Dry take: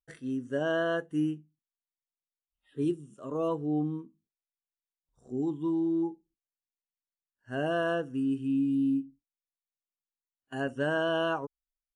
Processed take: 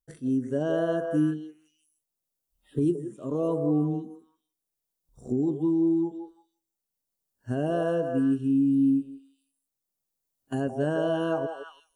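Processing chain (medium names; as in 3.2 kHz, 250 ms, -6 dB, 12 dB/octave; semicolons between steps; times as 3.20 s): recorder AGC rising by 6.7 dB/s; peaking EQ 2 kHz -14.5 dB 2.7 oct; repeats whose band climbs or falls 169 ms, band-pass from 600 Hz, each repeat 1.4 oct, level -2 dB; trim +6.5 dB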